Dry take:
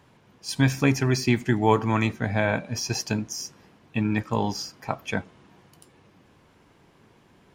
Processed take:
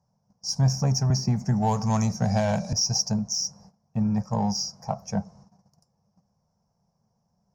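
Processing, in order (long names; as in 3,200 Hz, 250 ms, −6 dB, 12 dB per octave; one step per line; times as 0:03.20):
drawn EQ curve 110 Hz 0 dB, 200 Hz +5 dB, 310 Hz −23 dB, 510 Hz −4 dB, 730 Hz +2 dB, 1,800 Hz −20 dB, 3,400 Hz −30 dB, 5,500 Hz +9 dB, 8,400 Hz −13 dB
noise gate −52 dBFS, range −16 dB
in parallel at −9 dB: soft clipping −33 dBFS, distortion −5 dB
0:01.10–0:02.73: on the sum: multiband upward and downward compressor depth 100%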